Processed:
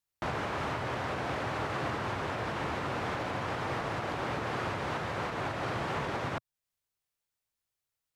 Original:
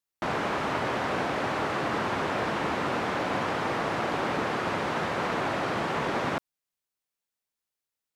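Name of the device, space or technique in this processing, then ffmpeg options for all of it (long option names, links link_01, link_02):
car stereo with a boomy subwoofer: -af "lowshelf=frequency=150:width_type=q:width=1.5:gain=6.5,alimiter=level_in=0.5dB:limit=-24dB:level=0:latency=1:release=323,volume=-0.5dB"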